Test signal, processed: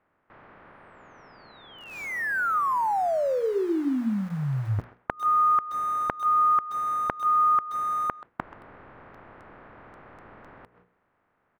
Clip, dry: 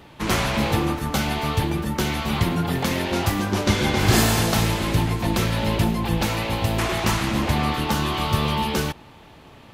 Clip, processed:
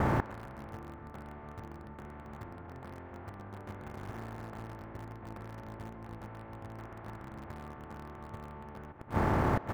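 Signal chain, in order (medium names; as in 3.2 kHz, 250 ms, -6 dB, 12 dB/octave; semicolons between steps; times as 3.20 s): spectral levelling over time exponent 0.4; gate with hold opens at -26 dBFS; low-pass 1.7 kHz 24 dB/octave; hum notches 60/120/180/240/300/360/420/480 Hz; dynamic bell 170 Hz, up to -6 dB, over -35 dBFS, Q 5; inverted gate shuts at -14 dBFS, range -24 dB; in parallel at -6 dB: small samples zeroed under -33.5 dBFS; on the sum: speakerphone echo 130 ms, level -16 dB; trim -4.5 dB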